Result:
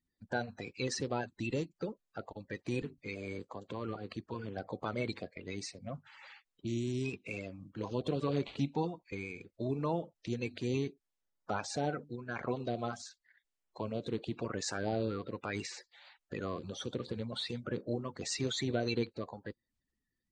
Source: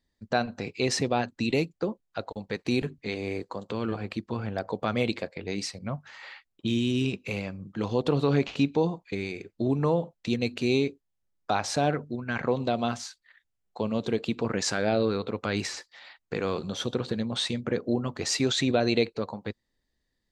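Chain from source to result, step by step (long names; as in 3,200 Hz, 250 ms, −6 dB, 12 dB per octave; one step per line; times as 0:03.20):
spectral magnitudes quantised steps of 30 dB
downsampling to 22,050 Hz
level −8.5 dB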